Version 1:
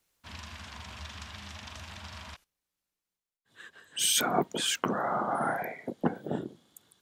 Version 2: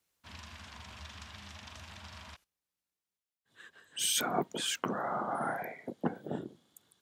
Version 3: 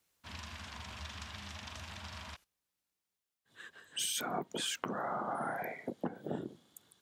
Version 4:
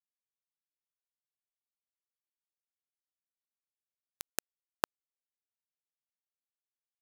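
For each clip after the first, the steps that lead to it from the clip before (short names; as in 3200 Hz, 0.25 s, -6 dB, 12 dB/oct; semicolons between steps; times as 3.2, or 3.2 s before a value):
HPF 48 Hz; gain -4.5 dB
compressor 6:1, threshold -36 dBFS, peak gain reduction 11 dB; gain +2.5 dB
on a send: feedback echo 0.184 s, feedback 39%, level -9 dB; on the sum: bit-crush 4-bit; gain +7 dB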